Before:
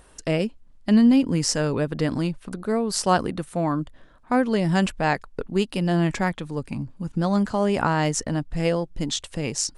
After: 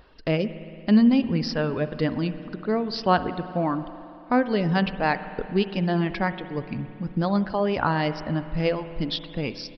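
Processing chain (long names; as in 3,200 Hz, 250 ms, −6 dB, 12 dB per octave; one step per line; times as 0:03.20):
reverb reduction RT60 1.2 s
downsampling to 11,025 Hz
spring reverb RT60 2.8 s, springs 56 ms, chirp 75 ms, DRR 11.5 dB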